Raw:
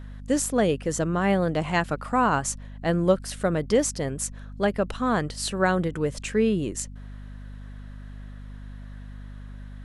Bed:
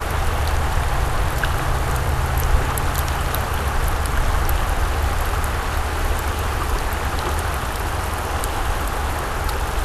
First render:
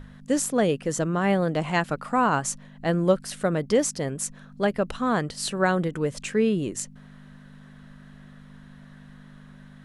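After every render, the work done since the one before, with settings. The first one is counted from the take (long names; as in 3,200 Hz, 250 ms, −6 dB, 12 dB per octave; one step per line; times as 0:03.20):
mains-hum notches 50/100 Hz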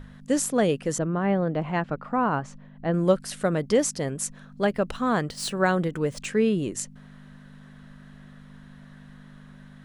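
0:00.98–0:02.94: head-to-tape spacing loss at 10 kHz 30 dB
0:04.51–0:06.26: running median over 3 samples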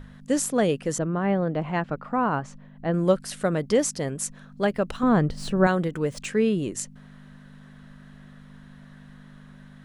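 0:05.03–0:05.67: spectral tilt −3 dB per octave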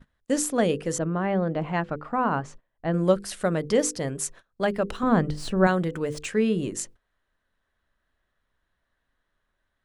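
mains-hum notches 50/100/150/200/250/300/350/400/450/500 Hz
noise gate −43 dBFS, range −22 dB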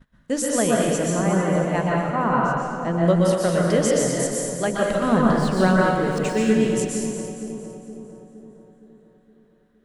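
echo with a time of its own for lows and highs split 900 Hz, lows 466 ms, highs 227 ms, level −9 dB
dense smooth reverb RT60 1.1 s, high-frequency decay 0.9×, pre-delay 110 ms, DRR −2.5 dB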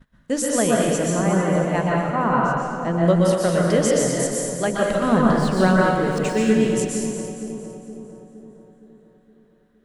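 level +1 dB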